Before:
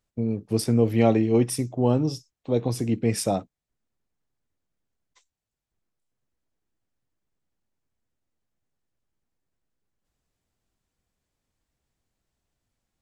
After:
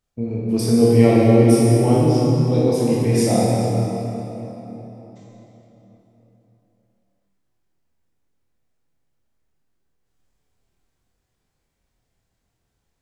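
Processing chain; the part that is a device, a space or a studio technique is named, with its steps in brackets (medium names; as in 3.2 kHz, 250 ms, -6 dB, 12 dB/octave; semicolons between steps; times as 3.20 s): tunnel (flutter echo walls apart 4.4 m, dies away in 0.23 s; reverberation RT60 3.9 s, pre-delay 21 ms, DRR -5.5 dB); trim -1 dB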